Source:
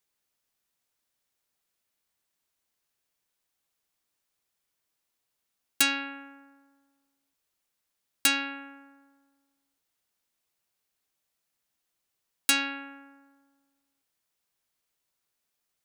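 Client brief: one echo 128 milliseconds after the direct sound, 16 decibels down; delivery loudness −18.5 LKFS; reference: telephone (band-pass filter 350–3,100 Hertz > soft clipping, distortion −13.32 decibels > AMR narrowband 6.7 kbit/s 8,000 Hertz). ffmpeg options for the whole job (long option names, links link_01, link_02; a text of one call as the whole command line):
ffmpeg -i in.wav -af "highpass=350,lowpass=3100,aecho=1:1:128:0.158,asoftclip=threshold=-23.5dB,volume=17.5dB" -ar 8000 -c:a libopencore_amrnb -b:a 6700 out.amr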